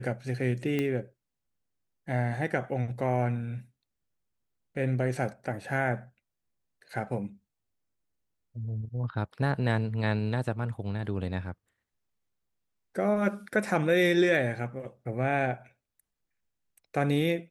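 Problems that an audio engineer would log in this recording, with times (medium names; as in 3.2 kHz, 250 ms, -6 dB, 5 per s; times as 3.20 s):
0.79 s: pop -17 dBFS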